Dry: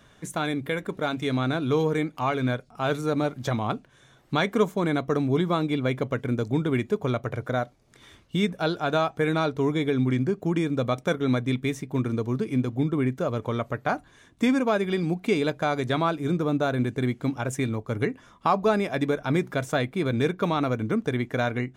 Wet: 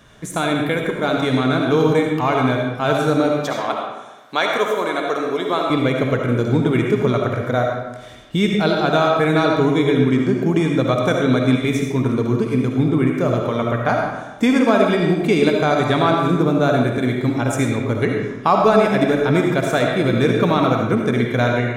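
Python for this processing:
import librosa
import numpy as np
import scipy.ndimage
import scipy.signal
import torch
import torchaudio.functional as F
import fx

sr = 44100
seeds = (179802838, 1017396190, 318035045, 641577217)

y = fx.highpass(x, sr, hz=500.0, slope=12, at=(3.3, 5.7))
y = fx.rev_freeverb(y, sr, rt60_s=1.1, hf_ratio=0.75, predelay_ms=30, drr_db=0.5)
y = y * librosa.db_to_amplitude(6.0)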